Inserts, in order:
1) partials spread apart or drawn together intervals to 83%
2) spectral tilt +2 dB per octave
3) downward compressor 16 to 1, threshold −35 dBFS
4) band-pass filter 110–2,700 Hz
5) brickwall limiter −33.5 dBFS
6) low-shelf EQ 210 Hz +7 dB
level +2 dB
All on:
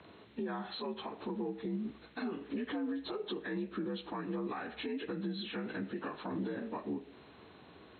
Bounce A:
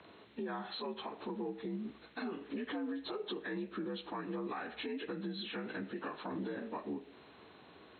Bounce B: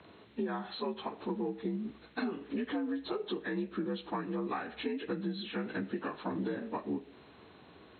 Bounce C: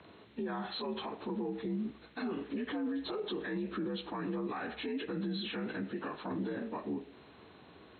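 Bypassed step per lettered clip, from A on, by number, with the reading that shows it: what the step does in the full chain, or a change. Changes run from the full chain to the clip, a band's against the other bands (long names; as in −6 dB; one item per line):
6, 125 Hz band −3.5 dB
5, change in crest factor +3.0 dB
3, average gain reduction 4.5 dB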